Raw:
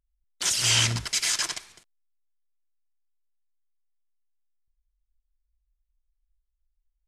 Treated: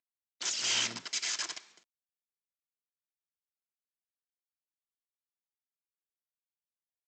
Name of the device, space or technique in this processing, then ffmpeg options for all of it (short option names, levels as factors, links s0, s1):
Bluetooth headset: -af "highpass=f=200:w=0.5412,highpass=f=200:w=1.3066,aresample=16000,aresample=44100,volume=0.398" -ar 32000 -c:a sbc -b:a 64k